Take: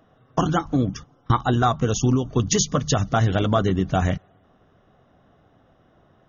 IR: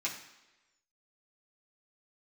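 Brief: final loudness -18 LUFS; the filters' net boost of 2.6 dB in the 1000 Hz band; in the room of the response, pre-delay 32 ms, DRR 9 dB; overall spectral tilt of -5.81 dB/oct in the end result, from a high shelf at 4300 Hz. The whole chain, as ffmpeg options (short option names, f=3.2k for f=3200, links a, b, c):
-filter_complex "[0:a]equalizer=f=1k:t=o:g=4,highshelf=f=4.3k:g=-5,asplit=2[a][b];[1:a]atrim=start_sample=2205,adelay=32[c];[b][c]afir=irnorm=-1:irlink=0,volume=-13dB[d];[a][d]amix=inputs=2:normalize=0,volume=3.5dB"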